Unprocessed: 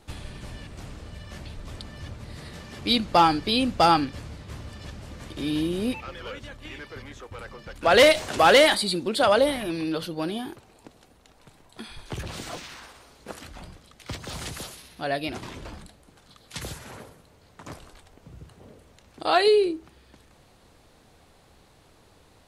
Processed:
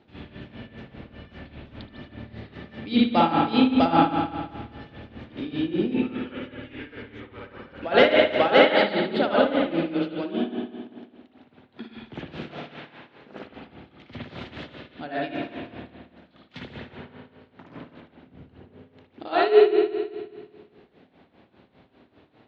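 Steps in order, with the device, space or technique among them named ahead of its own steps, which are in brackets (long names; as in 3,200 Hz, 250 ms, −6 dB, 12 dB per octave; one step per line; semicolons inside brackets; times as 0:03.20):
combo amplifier with spring reverb and tremolo (spring reverb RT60 1.6 s, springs 54 ms, chirp 25 ms, DRR −3.5 dB; amplitude tremolo 5 Hz, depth 79%; loudspeaker in its box 110–3,600 Hz, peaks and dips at 250 Hz +8 dB, 370 Hz +3 dB, 1,100 Hz −5 dB)
level −2 dB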